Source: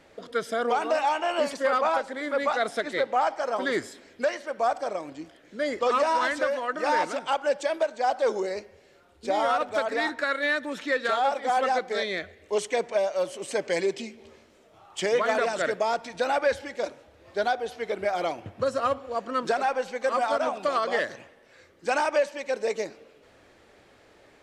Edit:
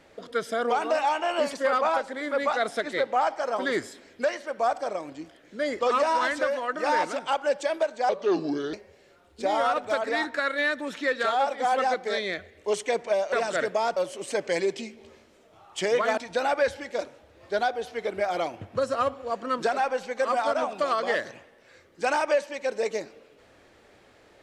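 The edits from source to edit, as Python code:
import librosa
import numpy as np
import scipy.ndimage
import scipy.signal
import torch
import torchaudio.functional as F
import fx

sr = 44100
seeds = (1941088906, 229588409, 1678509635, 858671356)

y = fx.edit(x, sr, fx.speed_span(start_s=8.09, length_s=0.49, speed=0.76),
    fx.move(start_s=15.38, length_s=0.64, to_s=13.17), tone=tone)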